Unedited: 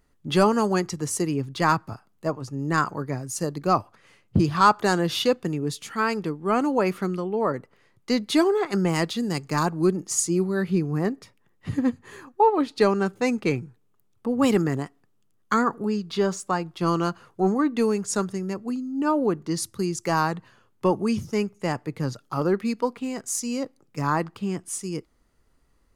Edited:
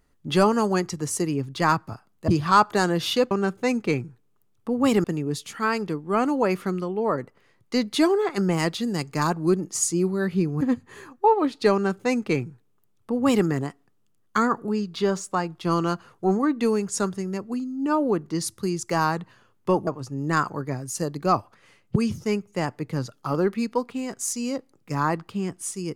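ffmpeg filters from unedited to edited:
-filter_complex "[0:a]asplit=7[a][b][c][d][e][f][g];[a]atrim=end=2.282[h];[b]atrim=start=4.368:end=5.402[i];[c]atrim=start=12.888:end=14.622[j];[d]atrim=start=5.398:end=10.972[k];[e]atrim=start=11.768:end=21.032[l];[f]atrim=start=2.278:end=4.372[m];[g]atrim=start=21.028[n];[h][i]acrossfade=d=0.004:c1=hsin:c2=hsin[o];[o][j]acrossfade=d=0.004:c1=hsin:c2=hsin[p];[p][k]acrossfade=d=0.004:c1=hsin:c2=hsin[q];[q][l]acrossfade=d=0.004:c1=hsin:c2=hsin[r];[r][m]acrossfade=d=0.004:c1=hsin:c2=hsin[s];[s][n]acrossfade=d=0.004:c1=hsin:c2=hsin"

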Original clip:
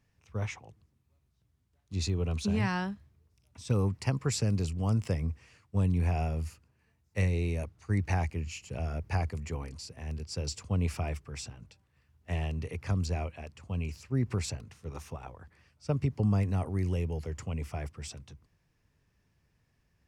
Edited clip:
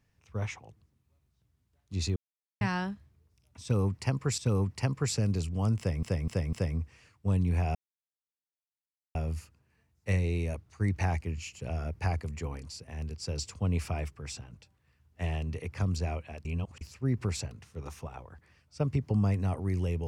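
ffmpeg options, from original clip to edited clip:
-filter_complex "[0:a]asplit=10[a][b][c][d][e][f][g][h][i][j];[a]atrim=end=2.16,asetpts=PTS-STARTPTS,afade=t=out:st=2.156:d=0.004:c=hsin[k];[b]atrim=start=2.16:end=2.61,asetpts=PTS-STARTPTS,volume=0[l];[c]atrim=start=2.61:end=4.382,asetpts=PTS-STARTPTS,afade=t=in:d=0.004:c=hsin[m];[d]atrim=start=3.618:end=5.272[n];[e]atrim=start=5.018:end=5.272[o];[f]atrim=start=5.018:end=5.272[p];[g]atrim=start=5.018:end=6.24,asetpts=PTS-STARTPTS,afade=t=out:st=1.218:d=0.004:c=hsin,apad=pad_dur=1.4[q];[h]atrim=start=6.24:end=13.542,asetpts=PTS-STARTPTS,afade=t=in:d=0.004:c=hsin[r];[i]atrim=start=13.538:end=13.902,asetpts=PTS-STARTPTS,areverse[s];[j]atrim=start=13.898[t];[k][l][m]concat=n=3:v=0:a=1[u];[u][n]acrossfade=d=0.004:c1=hsin:c2=hsin[v];[v][o]acrossfade=d=0.004:c1=hsin:c2=hsin[w];[w][p]acrossfade=d=0.004:c1=hsin:c2=hsin[x];[q][r]concat=n=2:v=0:a=1[y];[x][y]acrossfade=d=0.004:c1=hsin:c2=hsin[z];[z][s]acrossfade=d=0.004:c1=hsin:c2=hsin[aa];[aa][t]acrossfade=d=0.004:c1=hsin:c2=hsin"

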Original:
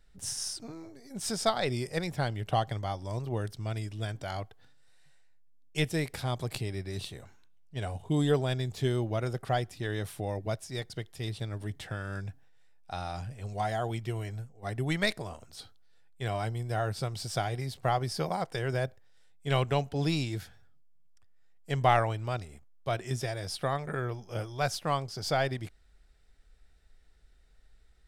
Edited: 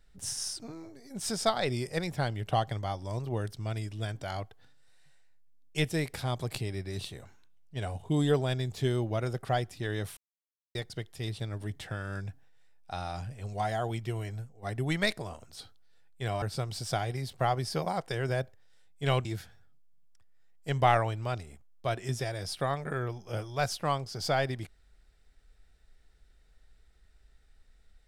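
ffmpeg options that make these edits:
-filter_complex "[0:a]asplit=5[a][b][c][d][e];[a]atrim=end=10.17,asetpts=PTS-STARTPTS,afade=t=out:st=10.166:d=0.004:c=hsin[f];[b]atrim=start=10.17:end=10.75,asetpts=PTS-STARTPTS,volume=0[g];[c]atrim=start=10.75:end=16.422,asetpts=PTS-STARTPTS,afade=t=in:d=0.004:c=hsin[h];[d]atrim=start=16.858:end=19.692[i];[e]atrim=start=20.268[j];[f][g][h]concat=n=3:v=0:a=1[k];[k][i]acrossfade=d=0.004:c1=hsin:c2=hsin[l];[l][j]acrossfade=d=0.004:c1=hsin:c2=hsin"

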